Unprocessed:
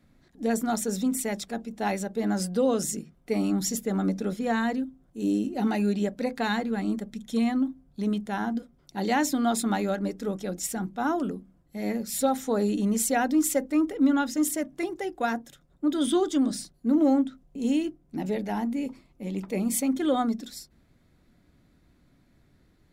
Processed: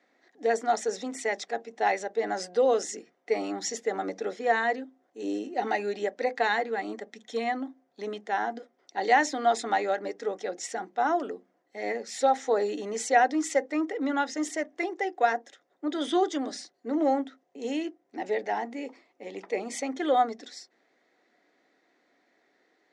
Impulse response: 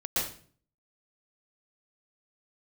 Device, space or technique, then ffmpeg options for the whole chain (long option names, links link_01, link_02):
phone speaker on a table: -af "highpass=frequency=330:width=0.5412,highpass=frequency=330:width=1.3066,equalizer=frequency=460:width_type=q:width=4:gain=5,equalizer=frequency=750:width_type=q:width=4:gain=8,equalizer=frequency=1900:width_type=q:width=4:gain=10,equalizer=frequency=6100:width_type=q:width=4:gain=3,lowpass=frequency=6700:width=0.5412,lowpass=frequency=6700:width=1.3066,volume=-1.5dB"